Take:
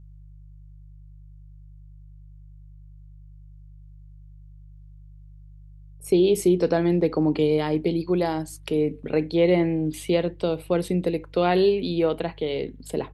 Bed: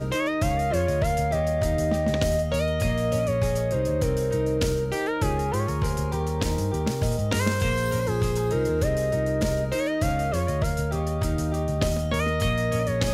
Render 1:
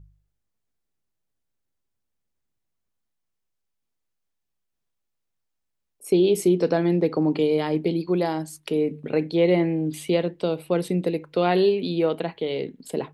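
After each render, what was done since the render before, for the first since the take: de-hum 50 Hz, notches 3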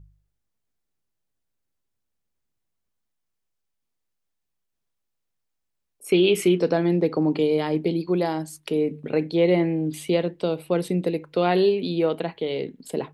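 6.09–6.59 band shelf 1900 Hz +12.5 dB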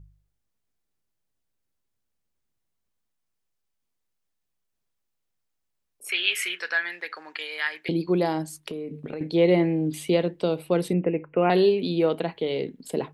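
6.09–7.89 resonant high-pass 1700 Hz, resonance Q 5.3; 8.59–9.21 compressor 12:1, threshold -29 dBFS; 10.93–11.5 steep low-pass 2800 Hz 96 dB/oct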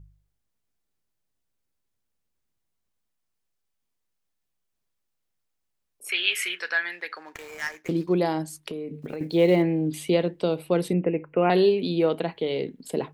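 7.26–8.14 median filter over 15 samples; 9.02–9.64 block floating point 7-bit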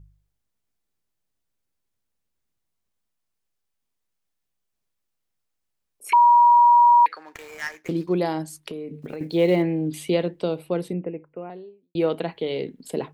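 6.13–7.06 bleep 957 Hz -10.5 dBFS; 10.19–11.95 studio fade out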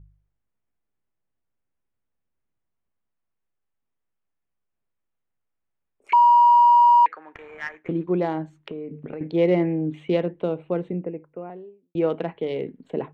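Wiener smoothing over 9 samples; LPF 3400 Hz 12 dB/oct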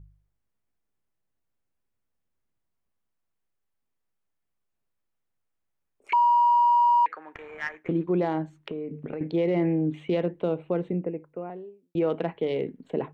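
limiter -16.5 dBFS, peak gain reduction 7 dB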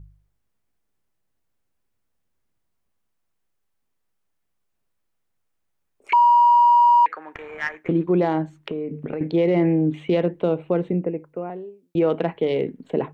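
gain +5.5 dB

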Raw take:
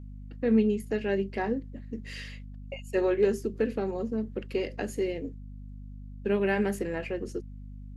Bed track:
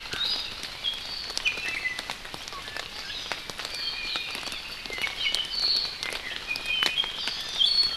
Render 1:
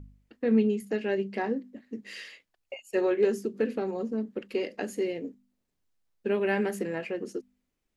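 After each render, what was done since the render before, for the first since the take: de-hum 50 Hz, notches 5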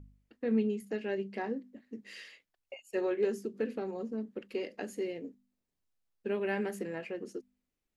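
gain -6 dB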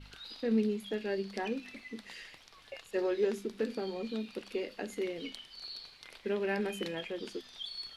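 add bed track -20 dB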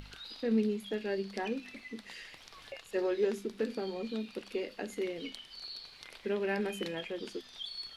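upward compressor, threshold -44 dBFS

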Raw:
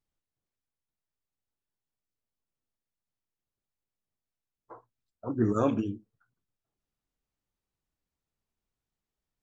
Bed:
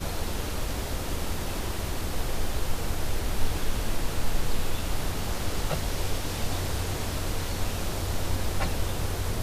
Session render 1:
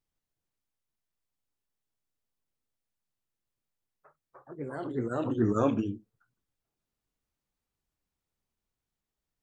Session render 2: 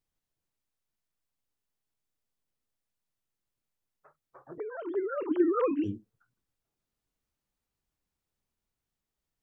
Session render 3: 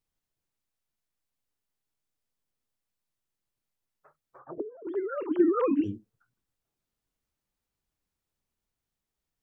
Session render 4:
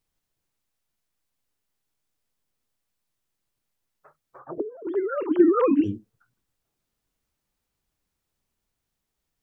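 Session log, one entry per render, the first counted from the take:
echoes that change speed 0.157 s, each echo +2 st, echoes 2, each echo -6 dB
4.58–5.84 sine-wave speech
4.39–4.87 envelope low-pass 290–1500 Hz down, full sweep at -36 dBFS; 5.39–5.81 small resonant body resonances 210/820 Hz, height 13 dB
gain +5.5 dB

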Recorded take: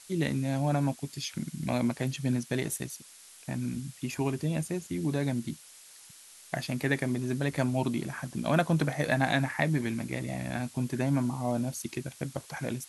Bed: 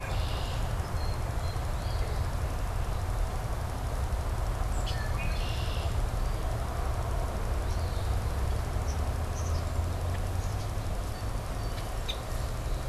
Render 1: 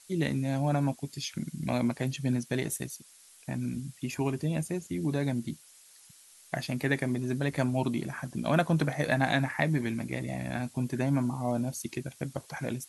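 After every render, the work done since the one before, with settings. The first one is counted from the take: denoiser 6 dB, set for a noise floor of -53 dBFS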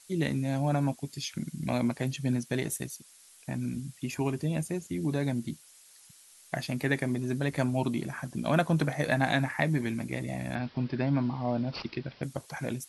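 10.55–12.23 careless resampling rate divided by 4×, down none, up filtered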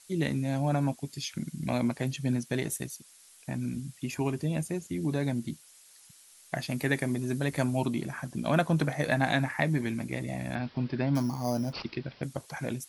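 6.7–7.86 high shelf 7800 Hz +7.5 dB; 11.15–11.73 careless resampling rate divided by 8×, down filtered, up hold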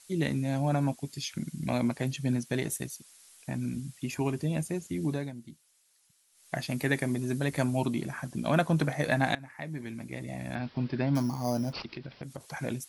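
5.08–6.56 dip -12 dB, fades 0.24 s; 9.35–10.85 fade in, from -21 dB; 11.81–12.41 compressor 3:1, threshold -37 dBFS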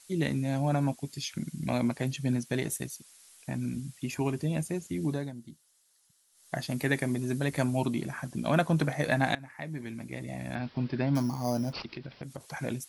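5.12–6.76 bell 2400 Hz -8 dB 0.35 oct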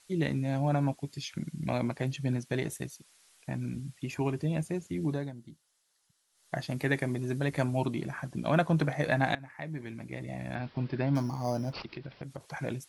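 LPF 3700 Hz 6 dB/oct; bell 240 Hz -5.5 dB 0.22 oct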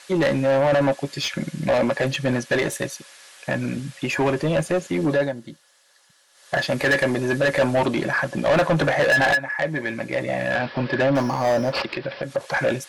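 small resonant body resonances 550/1700 Hz, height 13 dB, ringing for 85 ms; overdrive pedal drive 27 dB, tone 3200 Hz, clips at -10 dBFS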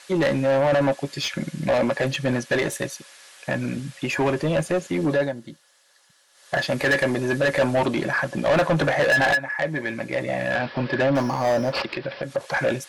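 gain -1 dB

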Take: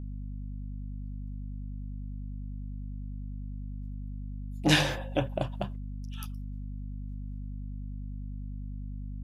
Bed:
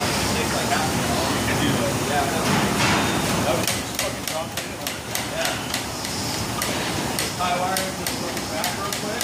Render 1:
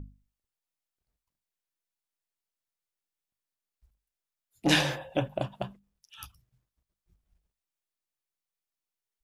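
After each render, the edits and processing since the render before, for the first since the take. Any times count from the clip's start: notches 50/100/150/200/250 Hz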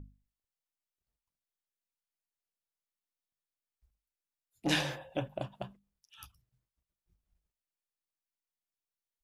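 gain -6.5 dB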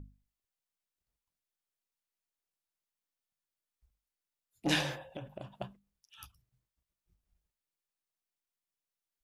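5.02–5.56 compressor 12:1, threshold -38 dBFS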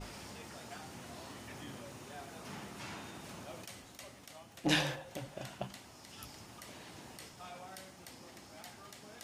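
add bed -26.5 dB

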